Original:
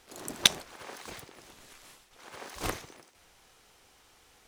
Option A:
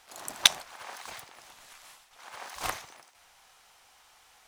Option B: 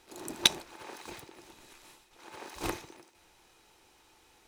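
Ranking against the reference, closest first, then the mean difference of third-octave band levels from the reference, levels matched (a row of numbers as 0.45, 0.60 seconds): B, A; 1.5, 3.5 decibels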